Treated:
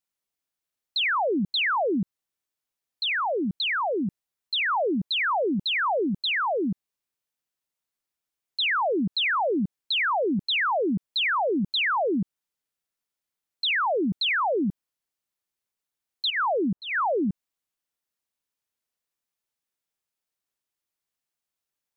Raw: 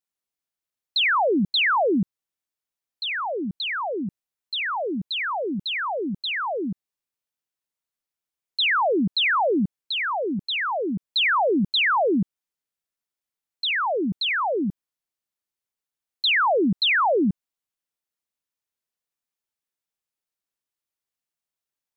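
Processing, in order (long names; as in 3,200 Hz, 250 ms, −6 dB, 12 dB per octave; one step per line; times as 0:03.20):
0:04.68–0:06.07: dynamic equaliser 690 Hz, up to +3 dB, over −38 dBFS, Q 1.1
0:16.30–0:17.29: low-pass filter 1,200 Hz 12 dB per octave
brickwall limiter −22.5 dBFS, peak gain reduction 6 dB
level +1.5 dB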